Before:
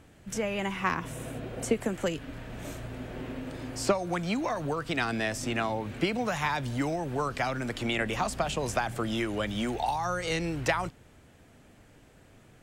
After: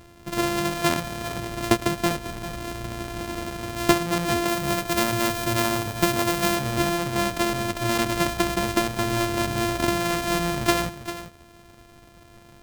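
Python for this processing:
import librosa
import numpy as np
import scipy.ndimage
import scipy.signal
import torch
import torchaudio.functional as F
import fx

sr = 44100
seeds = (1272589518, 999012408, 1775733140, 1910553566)

y = np.r_[np.sort(x[:len(x) // 128 * 128].reshape(-1, 128), axis=1).ravel(), x[len(x) // 128 * 128:]]
y = fx.high_shelf(y, sr, hz=10000.0, db=6.0, at=(4.48, 6.56))
y = y + 10.0 ** (-12.0 / 20.0) * np.pad(y, (int(396 * sr / 1000.0), 0))[:len(y)]
y = y * 10.0 ** (6.5 / 20.0)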